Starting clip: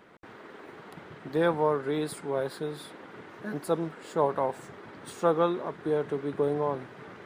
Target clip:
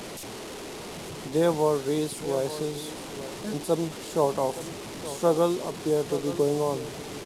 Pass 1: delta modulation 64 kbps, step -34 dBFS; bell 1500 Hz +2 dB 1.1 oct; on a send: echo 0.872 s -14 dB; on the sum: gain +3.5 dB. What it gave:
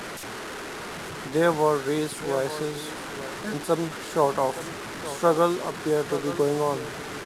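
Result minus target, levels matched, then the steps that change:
2000 Hz band +7.5 dB
change: bell 1500 Hz -9.5 dB 1.1 oct

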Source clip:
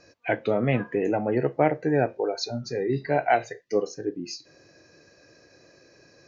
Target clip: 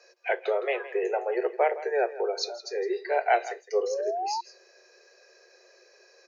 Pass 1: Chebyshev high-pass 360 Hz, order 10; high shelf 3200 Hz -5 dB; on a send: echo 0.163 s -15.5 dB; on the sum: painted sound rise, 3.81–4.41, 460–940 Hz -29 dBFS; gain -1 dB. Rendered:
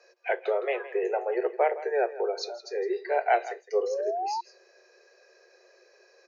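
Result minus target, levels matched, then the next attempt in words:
8000 Hz band -5.0 dB
Chebyshev high-pass 360 Hz, order 10; high shelf 3200 Hz +2 dB; on a send: echo 0.163 s -15.5 dB; on the sum: painted sound rise, 3.81–4.41, 460–940 Hz -29 dBFS; gain -1 dB

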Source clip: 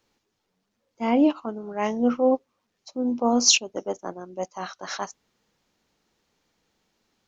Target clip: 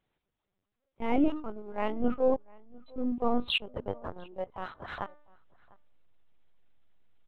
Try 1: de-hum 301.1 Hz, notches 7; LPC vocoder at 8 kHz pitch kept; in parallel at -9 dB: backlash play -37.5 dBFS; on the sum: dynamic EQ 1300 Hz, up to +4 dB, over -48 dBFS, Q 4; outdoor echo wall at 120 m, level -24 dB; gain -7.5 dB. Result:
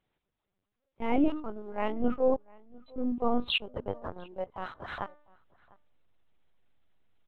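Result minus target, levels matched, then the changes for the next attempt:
backlash: distortion -7 dB
change: backlash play -29.5 dBFS

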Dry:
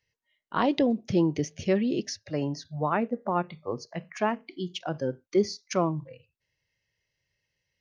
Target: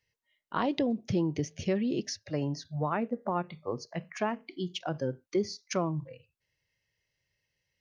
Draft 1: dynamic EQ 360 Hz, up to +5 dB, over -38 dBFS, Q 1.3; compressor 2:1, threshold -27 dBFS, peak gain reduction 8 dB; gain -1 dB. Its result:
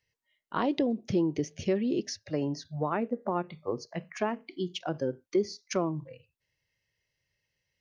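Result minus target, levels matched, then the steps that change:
125 Hz band -3.0 dB
change: dynamic EQ 110 Hz, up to +5 dB, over -38 dBFS, Q 1.3

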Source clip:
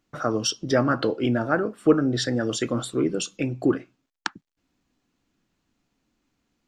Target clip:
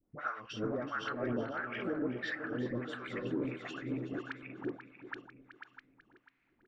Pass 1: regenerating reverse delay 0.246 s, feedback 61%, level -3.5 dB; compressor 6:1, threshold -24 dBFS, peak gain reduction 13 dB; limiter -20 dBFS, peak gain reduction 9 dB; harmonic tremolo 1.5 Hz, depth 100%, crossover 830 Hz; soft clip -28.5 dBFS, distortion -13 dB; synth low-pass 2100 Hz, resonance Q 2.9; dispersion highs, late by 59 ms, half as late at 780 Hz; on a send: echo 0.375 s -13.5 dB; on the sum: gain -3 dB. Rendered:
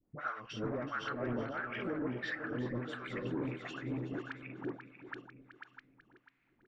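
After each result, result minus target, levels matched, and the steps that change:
soft clip: distortion +10 dB; 125 Hz band +3.0 dB
change: soft clip -21.5 dBFS, distortion -23 dB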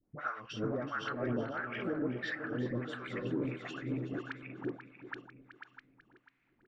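125 Hz band +3.0 dB
add after synth low-pass: bell 140 Hz -4.5 dB 0.65 oct

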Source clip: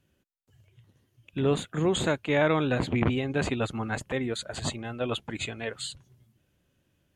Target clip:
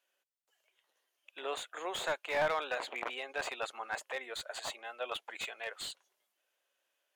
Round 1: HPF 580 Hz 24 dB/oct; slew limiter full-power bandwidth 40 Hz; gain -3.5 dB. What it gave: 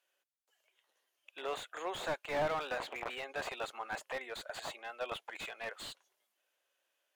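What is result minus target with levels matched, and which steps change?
slew limiter: distortion +7 dB
change: slew limiter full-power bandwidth 88 Hz

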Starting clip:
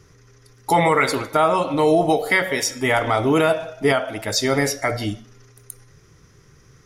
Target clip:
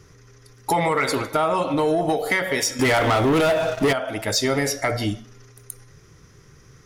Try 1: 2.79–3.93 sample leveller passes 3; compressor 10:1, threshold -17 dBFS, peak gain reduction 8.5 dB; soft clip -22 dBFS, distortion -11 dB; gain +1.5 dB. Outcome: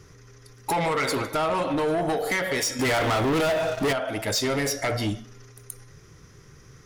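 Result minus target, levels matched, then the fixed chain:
soft clip: distortion +13 dB
2.79–3.93 sample leveller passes 3; compressor 10:1, threshold -17 dBFS, peak gain reduction 8.5 dB; soft clip -12 dBFS, distortion -24 dB; gain +1.5 dB

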